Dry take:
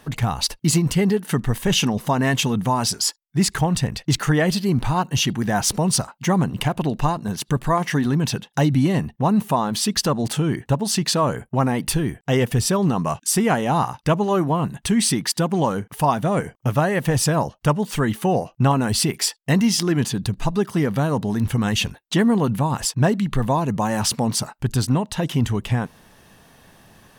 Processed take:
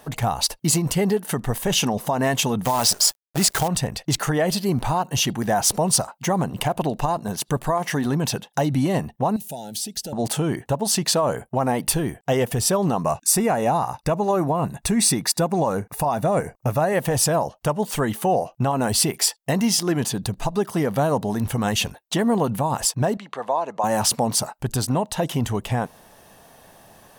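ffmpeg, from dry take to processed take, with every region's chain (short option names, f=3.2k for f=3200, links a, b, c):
-filter_complex "[0:a]asettb=1/sr,asplit=3[a][b][c];[a]atrim=end=2.654[d];[b]atrim=start=2.65:end=3.68,asetpts=PTS-STARTPTS,afade=t=in:d=0.004:c=qsin,afade=t=out:st=1.026:d=0.004:c=qsin,equalizer=f=4.5k:w=0.4:g=5.5,acrusher=bits=5:dc=4:mix=0:aa=0.000001[e];[c]atrim=start=3.676[f];[d][e]acrossfade=d=0.004:c1=hsin:c2=qsin[g];[g][f]acrossfade=d=0.004:c1=qsin:c2=hsin,asettb=1/sr,asplit=3[h][i][j];[h]atrim=end=9.364[k];[i]atrim=start=9.36:end=10.13,asetpts=PTS-STARTPTS,afade=t=in:d=0.004:c=qsin,afade=t=out:st=0.766:d=0.004:c=qsin,equalizer=f=1.4k:w=0.69:g=-10.5,acrossover=split=85|2400[l][m][n];[l]acompressor=threshold=-49dB:ratio=4[o];[m]acompressor=threshold=-34dB:ratio=4[p];[n]acompressor=threshold=-29dB:ratio=4[q];[o][p][q]amix=inputs=3:normalize=0,asuperstop=centerf=1100:order=12:qfactor=2.7[r];[j]atrim=start=10.126[s];[k][r]acrossfade=d=0.004:c1=hsin:c2=qsin[t];[t][s]acrossfade=d=0.004:c1=qsin:c2=hsin,asettb=1/sr,asplit=3[u][v][w];[u]atrim=end=13.044[x];[v]atrim=start=13.04:end=16.93,asetpts=PTS-STARTPTS,afade=t=in:d=0.004:c=qsin,afade=t=out:st=3.886:d=0.004:c=qsin,asuperstop=centerf=3100:order=8:qfactor=7.6,lowshelf=f=77:g=10.5[y];[w]atrim=start=16.926[z];[x][y]acrossfade=d=0.004:c1=hsin:c2=qsin[aa];[aa][z]acrossfade=d=0.004:c1=qsin:c2=hsin,asettb=1/sr,asplit=3[ab][ac][ad];[ab]atrim=end=23.174[ae];[ac]atrim=start=23.17:end=23.84,asetpts=PTS-STARTPTS,afade=t=in:d=0.004:c=qsin,afade=t=out:st=0.666:d=0.004:c=qsin,highpass=680,lowpass=5.6k,tiltshelf=f=880:g=4.5[af];[ad]atrim=start=23.836[ag];[ae][af]acrossfade=d=0.004:c1=hsin:c2=qsin[ah];[ah][ag]acrossfade=d=0.004:c1=qsin:c2=hsin,equalizer=f=670:w=1:g=10,alimiter=limit=-8dB:level=0:latency=1:release=95,highshelf=f=5.8k:g=10,volume=-4dB"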